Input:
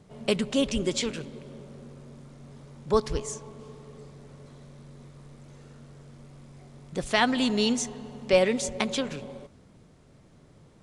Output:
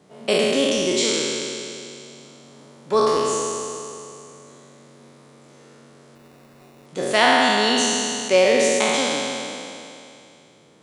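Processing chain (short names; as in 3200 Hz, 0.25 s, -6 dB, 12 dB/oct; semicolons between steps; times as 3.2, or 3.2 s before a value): spectral trails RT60 2.71 s; HPF 250 Hz 12 dB/oct; 6.15–6.86 sample-rate reducer 3200 Hz, jitter 0%; gain +2.5 dB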